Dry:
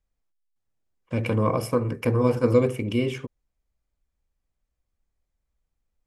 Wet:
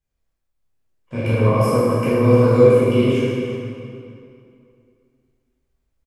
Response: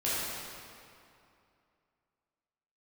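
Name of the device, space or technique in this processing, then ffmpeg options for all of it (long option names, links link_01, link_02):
cave: -filter_complex "[0:a]aecho=1:1:313:0.178[link_01];[1:a]atrim=start_sample=2205[link_02];[link_01][link_02]afir=irnorm=-1:irlink=0,volume=-2.5dB"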